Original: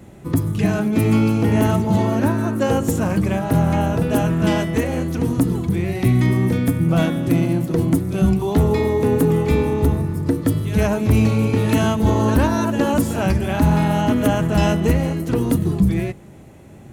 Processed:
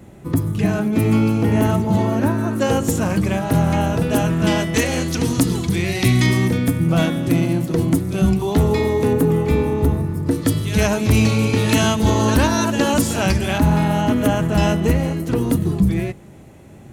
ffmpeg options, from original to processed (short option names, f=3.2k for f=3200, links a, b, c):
-af "asetnsamples=n=441:p=0,asendcmd='2.51 equalizer g 5;4.74 equalizer g 15;6.48 equalizer g 4.5;9.13 equalizer g -2;10.31 equalizer g 10;13.58 equalizer g 1',equalizer=f=5.1k:t=o:w=2.5:g=-1"